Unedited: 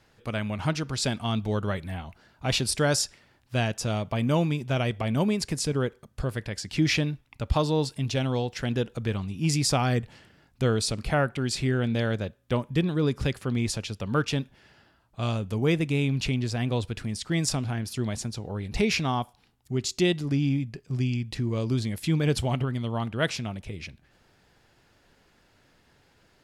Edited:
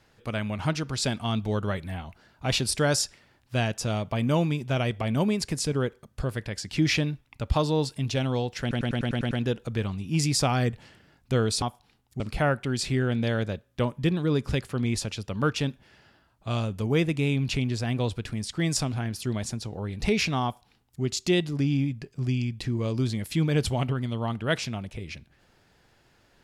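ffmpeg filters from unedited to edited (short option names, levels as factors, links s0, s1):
-filter_complex "[0:a]asplit=10[s0][s1][s2][s3][s4][s5][s6][s7][s8][s9];[s0]atrim=end=8.712[s10];[s1]atrim=start=8.608:end=8.712[s11];[s2]atrim=start=8.608:end=8.712[s12];[s3]atrim=start=8.608:end=8.712[s13];[s4]atrim=start=8.608:end=8.712[s14];[s5]atrim=start=8.608:end=8.712[s15];[s6]atrim=start=8.608:end=8.712[s16];[s7]atrim=start=8.608:end=10.922[s17];[s8]atrim=start=19.158:end=19.742[s18];[s9]atrim=start=10.918[s19];[s10][s11]acrossfade=d=0.004:c1=hsin:c2=hsin[s20];[s20][s12]acrossfade=d=0.004:c1=hsin:c2=hsin[s21];[s21][s13]acrossfade=d=0.004:c1=hsin:c2=hsin[s22];[s22][s14]acrossfade=d=0.004:c1=hsin:c2=hsin[s23];[s23][s15]acrossfade=d=0.004:c1=hsin:c2=hsin[s24];[s24][s16]acrossfade=d=0.004:c1=hsin:c2=hsin[s25];[s25][s17]acrossfade=d=0.004:c1=hsin:c2=hsin[s26];[s26][s18]acrossfade=d=0.004:c1=hsin:c2=hsin[s27];[s27][s19]acrossfade=d=0.004:c1=hsin:c2=hsin"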